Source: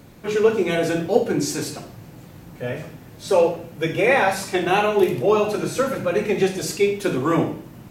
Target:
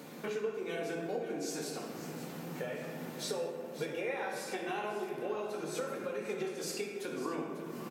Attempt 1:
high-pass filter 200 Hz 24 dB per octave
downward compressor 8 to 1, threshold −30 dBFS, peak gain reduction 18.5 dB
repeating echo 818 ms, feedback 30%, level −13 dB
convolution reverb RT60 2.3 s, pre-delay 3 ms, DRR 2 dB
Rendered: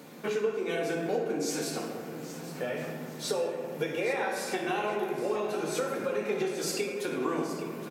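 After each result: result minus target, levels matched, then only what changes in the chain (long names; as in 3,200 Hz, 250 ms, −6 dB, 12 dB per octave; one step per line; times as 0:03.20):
echo 273 ms late; downward compressor: peak gain reduction −6.5 dB
change: repeating echo 545 ms, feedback 30%, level −13 dB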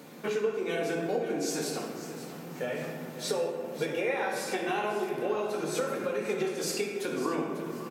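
downward compressor: peak gain reduction −6.5 dB
change: downward compressor 8 to 1, threshold −37.5 dBFS, peak gain reduction 25 dB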